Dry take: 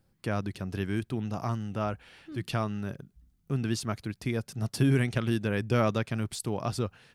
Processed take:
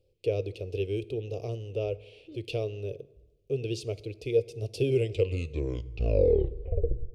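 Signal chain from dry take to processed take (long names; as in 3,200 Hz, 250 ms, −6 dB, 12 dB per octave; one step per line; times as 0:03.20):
turntable brake at the end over 2.29 s
drawn EQ curve 100 Hz 0 dB, 210 Hz −20 dB, 470 Hz +14 dB, 890 Hz −20 dB, 1,700 Hz −30 dB, 2,500 Hz +2 dB, 11,000 Hz −12 dB
convolution reverb RT60 1.1 s, pre-delay 3 ms, DRR 16 dB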